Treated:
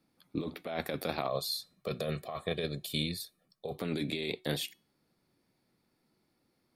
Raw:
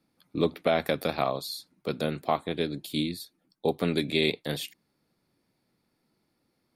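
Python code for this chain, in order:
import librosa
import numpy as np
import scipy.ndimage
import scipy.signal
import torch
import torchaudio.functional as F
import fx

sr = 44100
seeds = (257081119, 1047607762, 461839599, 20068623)

y = fx.comb(x, sr, ms=1.7, depth=0.7, at=(1.28, 3.77))
y = fx.over_compress(y, sr, threshold_db=-29.0, ratio=-1.0)
y = fx.comb_fb(y, sr, f0_hz=370.0, decay_s=0.35, harmonics='all', damping=0.0, mix_pct=40)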